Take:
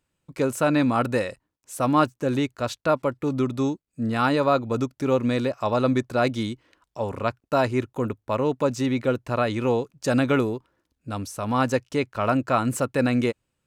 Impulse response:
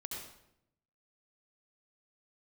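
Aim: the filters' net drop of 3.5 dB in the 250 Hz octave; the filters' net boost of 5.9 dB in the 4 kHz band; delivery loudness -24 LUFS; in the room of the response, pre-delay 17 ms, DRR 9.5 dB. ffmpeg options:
-filter_complex "[0:a]equalizer=f=250:t=o:g=-4,equalizer=f=4000:t=o:g=7,asplit=2[s0][s1];[1:a]atrim=start_sample=2205,adelay=17[s2];[s1][s2]afir=irnorm=-1:irlink=0,volume=0.376[s3];[s0][s3]amix=inputs=2:normalize=0,volume=1.12"

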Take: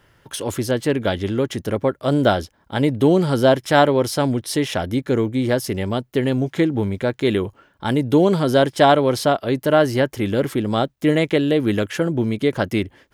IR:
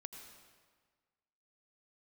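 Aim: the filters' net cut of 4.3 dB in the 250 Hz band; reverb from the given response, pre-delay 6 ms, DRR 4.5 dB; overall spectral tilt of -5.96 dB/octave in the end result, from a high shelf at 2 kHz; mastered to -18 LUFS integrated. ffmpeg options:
-filter_complex "[0:a]equalizer=f=250:t=o:g=-5.5,highshelf=f=2000:g=-7.5,asplit=2[s0][s1];[1:a]atrim=start_sample=2205,adelay=6[s2];[s1][s2]afir=irnorm=-1:irlink=0,volume=1[s3];[s0][s3]amix=inputs=2:normalize=0,volume=1.41"

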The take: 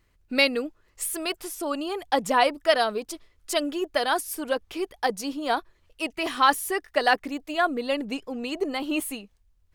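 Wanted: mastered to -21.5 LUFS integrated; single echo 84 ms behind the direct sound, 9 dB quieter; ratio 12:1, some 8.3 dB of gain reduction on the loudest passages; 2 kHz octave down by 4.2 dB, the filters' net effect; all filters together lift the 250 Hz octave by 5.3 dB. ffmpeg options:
-af "equalizer=f=250:t=o:g=6.5,equalizer=f=2000:t=o:g=-5.5,acompressor=threshold=0.0708:ratio=12,aecho=1:1:84:0.355,volume=2.37"

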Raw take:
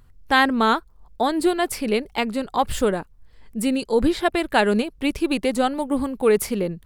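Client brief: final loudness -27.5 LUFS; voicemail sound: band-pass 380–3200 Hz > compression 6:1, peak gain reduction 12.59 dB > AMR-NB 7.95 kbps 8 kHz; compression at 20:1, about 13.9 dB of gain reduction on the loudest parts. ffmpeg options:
-af "acompressor=threshold=0.0447:ratio=20,highpass=380,lowpass=3200,acompressor=threshold=0.0112:ratio=6,volume=7.08" -ar 8000 -c:a libopencore_amrnb -b:a 7950

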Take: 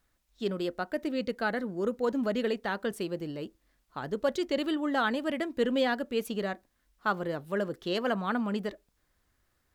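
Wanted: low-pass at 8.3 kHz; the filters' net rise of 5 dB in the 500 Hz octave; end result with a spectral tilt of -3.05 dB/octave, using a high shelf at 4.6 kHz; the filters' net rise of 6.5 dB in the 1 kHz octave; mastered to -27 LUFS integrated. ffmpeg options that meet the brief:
-af "lowpass=8300,equalizer=f=500:t=o:g=4,equalizer=f=1000:t=o:g=7,highshelf=f=4600:g=6.5,volume=1.06"

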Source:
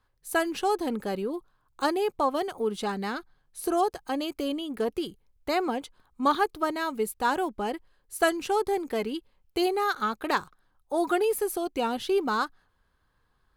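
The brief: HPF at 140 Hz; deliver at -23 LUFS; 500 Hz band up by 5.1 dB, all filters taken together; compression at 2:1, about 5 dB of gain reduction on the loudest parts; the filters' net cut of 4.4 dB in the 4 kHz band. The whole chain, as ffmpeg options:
-af "highpass=140,equalizer=f=500:t=o:g=7,equalizer=f=4000:t=o:g=-6,acompressor=threshold=0.0562:ratio=2,volume=2"

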